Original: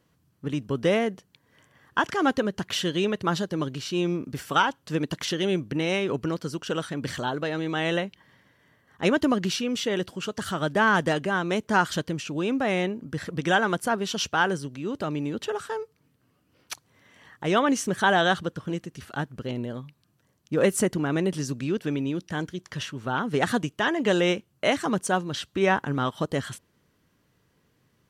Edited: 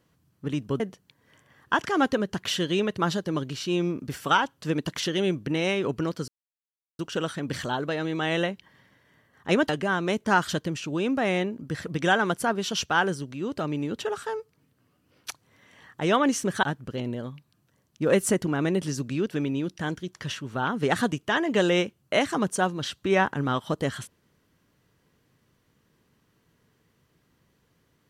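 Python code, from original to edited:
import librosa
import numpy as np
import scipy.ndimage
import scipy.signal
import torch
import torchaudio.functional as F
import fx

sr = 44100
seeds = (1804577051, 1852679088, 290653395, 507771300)

y = fx.edit(x, sr, fx.cut(start_s=0.8, length_s=0.25),
    fx.insert_silence(at_s=6.53, length_s=0.71),
    fx.cut(start_s=9.23, length_s=1.89),
    fx.cut(start_s=18.06, length_s=1.08), tone=tone)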